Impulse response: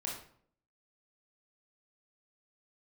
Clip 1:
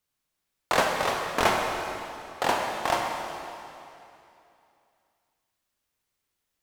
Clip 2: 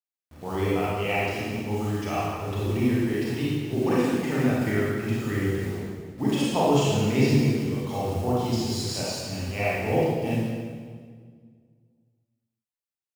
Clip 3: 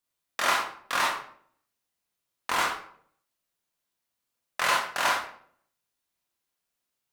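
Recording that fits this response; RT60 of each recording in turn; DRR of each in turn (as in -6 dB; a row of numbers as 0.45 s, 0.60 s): 3; 2.8 s, 1.8 s, 0.60 s; 1.0 dB, -8.0 dB, -3.0 dB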